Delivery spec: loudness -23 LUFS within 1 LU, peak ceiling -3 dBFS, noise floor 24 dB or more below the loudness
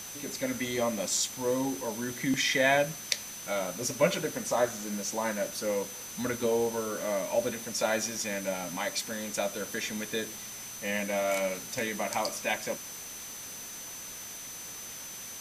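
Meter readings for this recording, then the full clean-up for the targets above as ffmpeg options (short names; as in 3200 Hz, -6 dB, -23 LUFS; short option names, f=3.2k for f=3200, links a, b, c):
steady tone 6100 Hz; tone level -43 dBFS; noise floor -43 dBFS; noise floor target -56 dBFS; loudness -31.5 LUFS; peak -8.0 dBFS; loudness target -23.0 LUFS
-> -af "bandreject=f=6.1k:w=30"
-af "afftdn=nr=13:nf=-43"
-af "volume=8.5dB,alimiter=limit=-3dB:level=0:latency=1"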